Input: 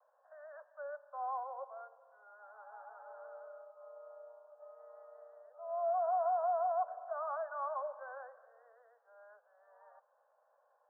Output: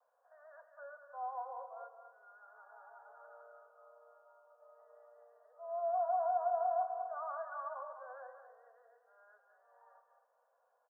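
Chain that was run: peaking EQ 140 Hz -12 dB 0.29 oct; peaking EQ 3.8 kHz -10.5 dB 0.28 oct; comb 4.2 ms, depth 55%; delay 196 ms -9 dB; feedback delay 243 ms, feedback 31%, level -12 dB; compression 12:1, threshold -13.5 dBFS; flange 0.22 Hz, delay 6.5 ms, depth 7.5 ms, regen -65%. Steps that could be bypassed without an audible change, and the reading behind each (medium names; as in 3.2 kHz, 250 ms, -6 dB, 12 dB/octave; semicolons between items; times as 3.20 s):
peaking EQ 140 Hz: input has nothing below 450 Hz; peaking EQ 3.8 kHz: input has nothing above 1.5 kHz; compression, threshold -13.5 dBFS: peak at its input -21.0 dBFS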